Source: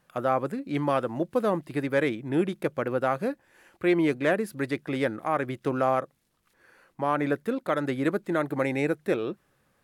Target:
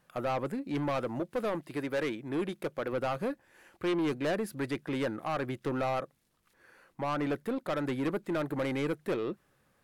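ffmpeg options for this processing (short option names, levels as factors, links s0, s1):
-filter_complex "[0:a]asettb=1/sr,asplit=3[s0][s1][s2];[s0]atrim=end=1.204[s3];[s1]atrim=start=1.2:end=2.93,asetpts=PTS-STARTPTS,afade=t=in:d=0.004:c=qsin,afade=t=out:st=1.726:d=0.004:c=qsin,lowshelf=f=190:g=-8.5[s4];[s2]atrim=start=2.926[s5];[s3][s4]acrossfade=d=0.004:c1=hsin:c2=qsin[s6];[s6][s5]acrossfade=d=0.004:c1=qsin:c2=hsin,asoftclip=type=tanh:threshold=0.0596,volume=0.841"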